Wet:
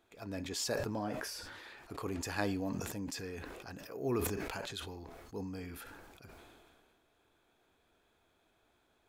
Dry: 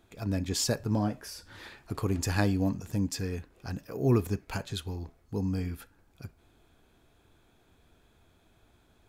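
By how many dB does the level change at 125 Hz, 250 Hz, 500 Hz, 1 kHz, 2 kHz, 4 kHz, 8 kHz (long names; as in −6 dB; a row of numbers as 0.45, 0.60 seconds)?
−13.5, −9.0, −4.5, −3.5, −2.5, −5.0, −6.0 decibels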